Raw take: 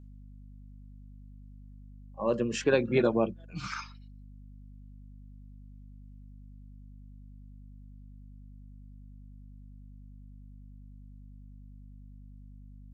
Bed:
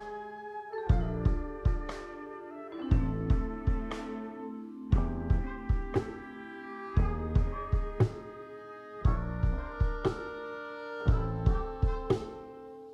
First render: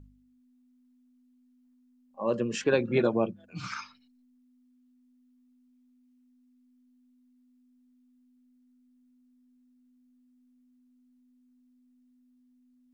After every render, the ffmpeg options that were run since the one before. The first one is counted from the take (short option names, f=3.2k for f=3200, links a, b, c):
-af "bandreject=f=50:t=h:w=4,bandreject=f=100:t=h:w=4,bandreject=f=150:t=h:w=4,bandreject=f=200:t=h:w=4"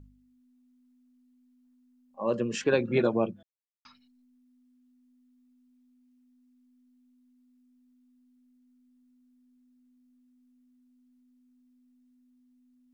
-filter_complex "[0:a]asplit=3[a][b][c];[a]atrim=end=3.43,asetpts=PTS-STARTPTS,afade=t=out:st=3.426:d=0.004:c=hsin[d];[b]atrim=start=3.43:end=3.85,asetpts=PTS-STARTPTS,volume=0[e];[c]atrim=start=3.85,asetpts=PTS-STARTPTS,afade=t=in:d=0.004:c=hsin[f];[d][e][f]concat=n=3:v=0:a=1"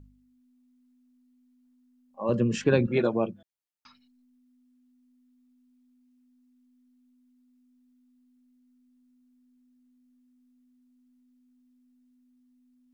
-filter_complex "[0:a]asettb=1/sr,asplit=3[a][b][c];[a]atrim=end=2.294[d];[b]atrim=start=2.29:end=2.87,asetpts=PTS-STARTPTS,afade=t=in:d=0.004:c=qsin,afade=t=out:st=0.576:d=0.004:c=qsin,bass=f=250:g=12,treble=f=4k:g=-1[e];[c]atrim=start=2.866[f];[d][e]acrossfade=d=0.004:c1=hsin:c2=qsin[g];[g][f]acrossfade=d=0.004:c1=qsin:c2=hsin"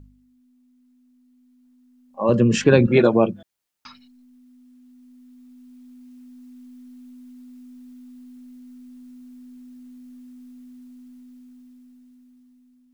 -filter_complex "[0:a]asplit=2[a][b];[b]alimiter=limit=-20dB:level=0:latency=1:release=165,volume=-1.5dB[c];[a][c]amix=inputs=2:normalize=0,dynaudnorm=f=600:g=7:m=16dB"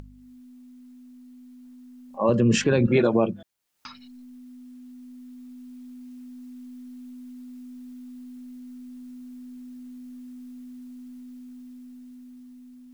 -af "alimiter=limit=-10.5dB:level=0:latency=1:release=98,acompressor=mode=upward:threshold=-38dB:ratio=2.5"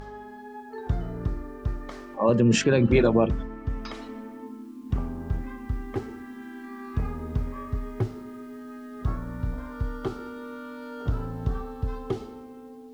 -filter_complex "[1:a]volume=-1dB[a];[0:a][a]amix=inputs=2:normalize=0"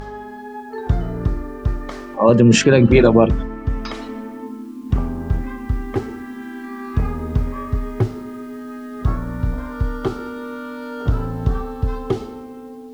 -af "volume=8.5dB,alimiter=limit=-1dB:level=0:latency=1"